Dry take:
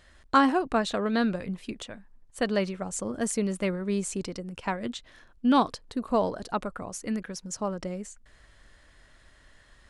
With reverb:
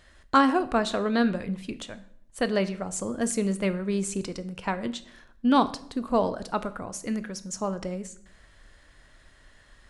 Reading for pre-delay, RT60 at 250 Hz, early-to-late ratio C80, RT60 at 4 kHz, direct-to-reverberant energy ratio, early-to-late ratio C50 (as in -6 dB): 13 ms, 0.80 s, 19.5 dB, 0.50 s, 12.0 dB, 16.0 dB